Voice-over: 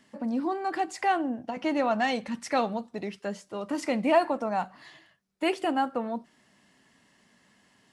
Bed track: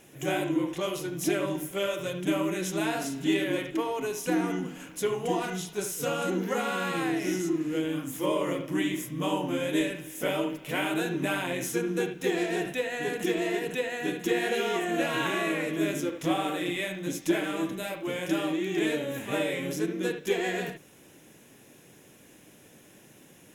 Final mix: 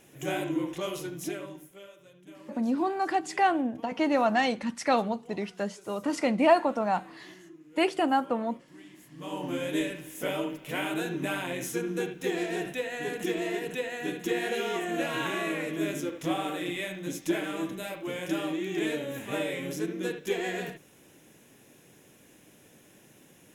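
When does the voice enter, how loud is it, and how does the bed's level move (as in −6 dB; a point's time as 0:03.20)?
2.35 s, +1.5 dB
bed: 0:01.06 −2.5 dB
0:01.98 −22.5 dB
0:08.92 −22.5 dB
0:09.47 −2.5 dB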